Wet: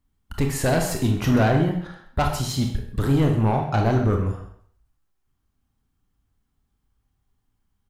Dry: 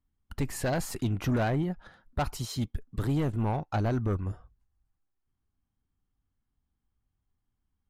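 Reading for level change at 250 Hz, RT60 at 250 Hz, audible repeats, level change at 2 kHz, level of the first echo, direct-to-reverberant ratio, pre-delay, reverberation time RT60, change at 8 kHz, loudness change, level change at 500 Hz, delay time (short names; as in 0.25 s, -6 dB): +9.0 dB, 0.55 s, 1, +8.5 dB, -15.0 dB, 2.0 dB, 24 ms, 0.55 s, +8.5 dB, +8.5 dB, +9.0 dB, 0.132 s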